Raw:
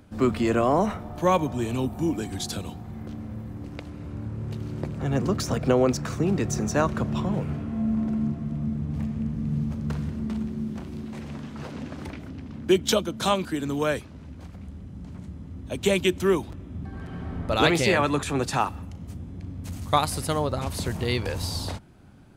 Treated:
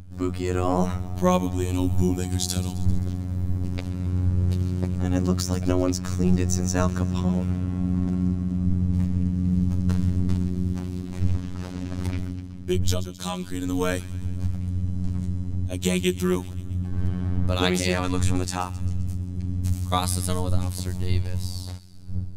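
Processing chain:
wind on the microphone 81 Hz −32 dBFS
bass and treble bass +9 dB, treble +8 dB
automatic gain control gain up to 11.5 dB
delay with a high-pass on its return 131 ms, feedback 62%, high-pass 2,200 Hz, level −16 dB
phases set to zero 90.8 Hz
level −6.5 dB

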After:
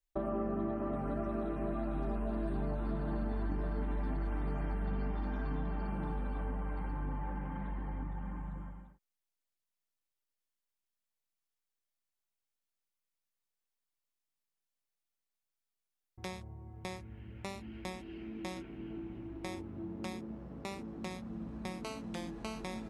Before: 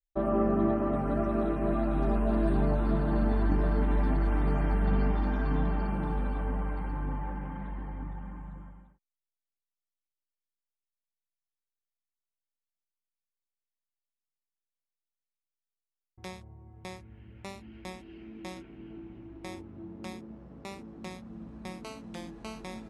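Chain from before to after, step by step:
downward compressor 3 to 1, threshold −38 dBFS, peak gain reduction 12.5 dB
level +2 dB

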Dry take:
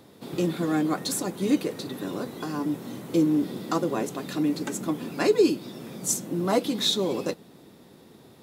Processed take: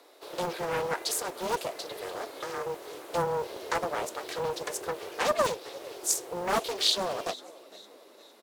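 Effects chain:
low-shelf EQ 460 Hz −9 dB
frequency shifter +180 Hz
echo with shifted repeats 457 ms, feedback 45%, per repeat −53 Hz, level −20 dB
highs frequency-modulated by the lows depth 0.56 ms

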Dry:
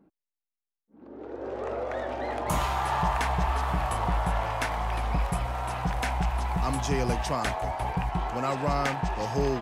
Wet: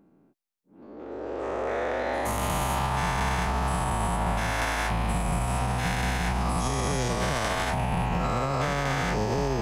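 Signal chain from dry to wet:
every bin's largest magnitude spread in time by 480 ms
brickwall limiter −15 dBFS, peak gain reduction 7.5 dB
level −3 dB

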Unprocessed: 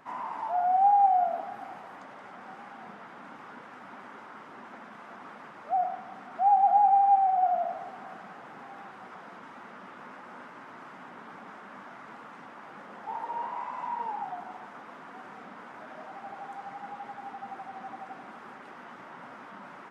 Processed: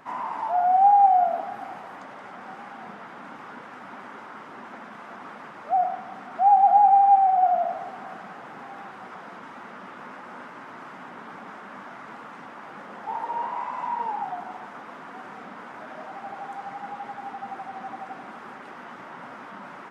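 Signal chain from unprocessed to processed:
level +5 dB

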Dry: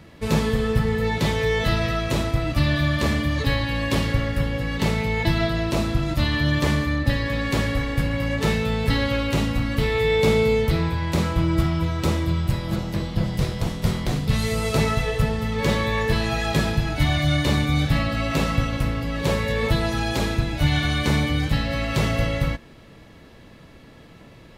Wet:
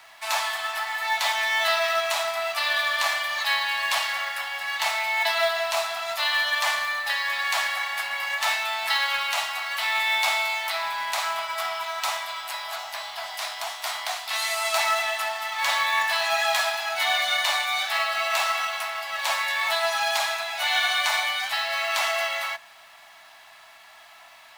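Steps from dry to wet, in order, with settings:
Butterworth high-pass 650 Hz 96 dB per octave
in parallel at −4 dB: log-companded quantiser 4 bits

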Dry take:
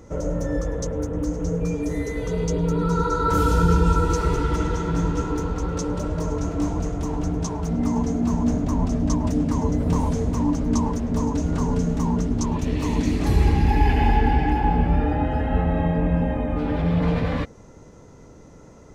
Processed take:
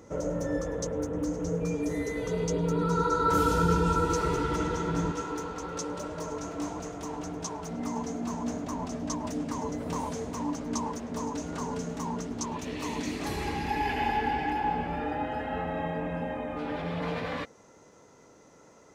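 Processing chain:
high-pass filter 200 Hz 6 dB per octave, from 0:05.12 620 Hz
level −2.5 dB

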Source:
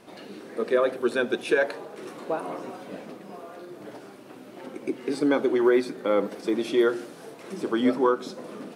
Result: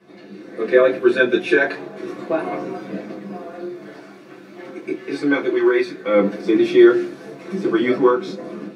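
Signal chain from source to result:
dynamic equaliser 2,500 Hz, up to +5 dB, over −45 dBFS, Q 1.2
automatic gain control gain up to 8 dB
0:03.68–0:06.14: low-shelf EQ 490 Hz −8.5 dB
convolution reverb, pre-delay 3 ms, DRR −5.5 dB
level −16.5 dB

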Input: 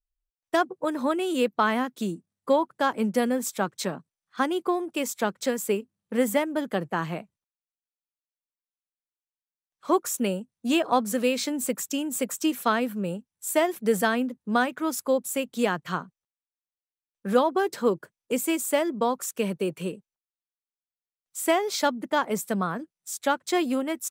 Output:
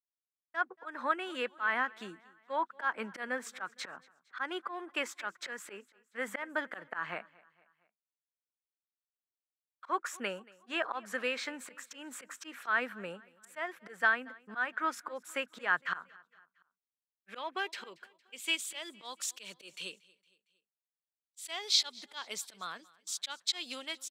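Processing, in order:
volume swells 169 ms
automatic gain control gain up to 15.5 dB
band-pass filter sweep 1,600 Hz → 3,900 Hz, 0:15.64–0:19.33
downward expander −51 dBFS
on a send: repeating echo 230 ms, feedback 51%, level −23.5 dB
on the sum: level −6.5 dB

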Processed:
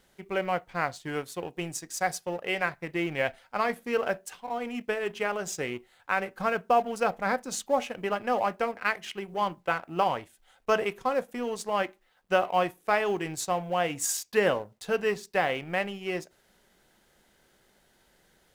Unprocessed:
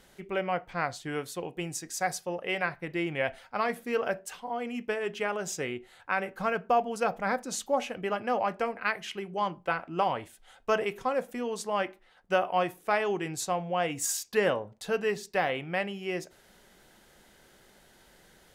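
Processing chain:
mu-law and A-law mismatch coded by A
level +2.5 dB

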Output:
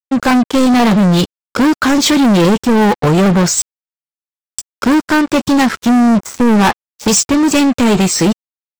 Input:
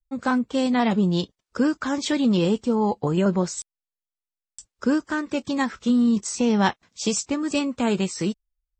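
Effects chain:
0:05.89–0:07.08: high shelf with overshoot 2,400 Hz −12.5 dB, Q 1.5
leveller curve on the samples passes 5
soft clipping −12 dBFS, distortion −20 dB
power curve on the samples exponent 2
level +5.5 dB

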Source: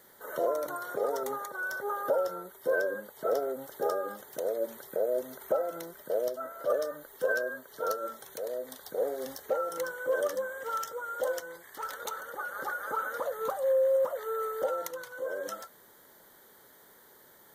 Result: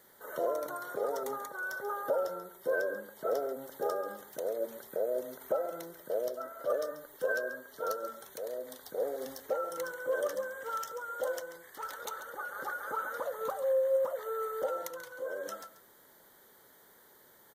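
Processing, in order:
single-tap delay 137 ms −13.5 dB
level −3 dB

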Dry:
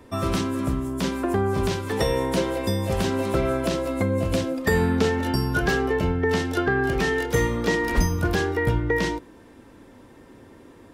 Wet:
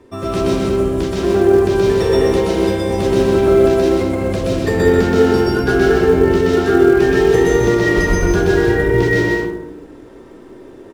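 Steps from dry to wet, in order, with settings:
low-pass filter 9,800 Hz 12 dB per octave
parametric band 380 Hz +11 dB 0.42 octaves
loudspeakers that aren't time-aligned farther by 43 metres −1 dB, 70 metres −6 dB
convolution reverb RT60 1.1 s, pre-delay 95 ms, DRR −2.5 dB
in parallel at −12 dB: floating-point word with a short mantissa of 2 bits
on the sum: level −3.5 dB

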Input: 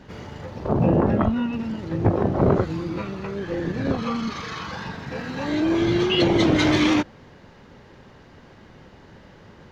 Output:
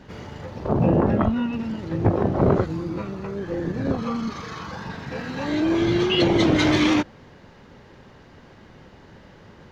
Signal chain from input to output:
0:02.66–0:04.90: parametric band 2,900 Hz −6 dB 1.9 octaves

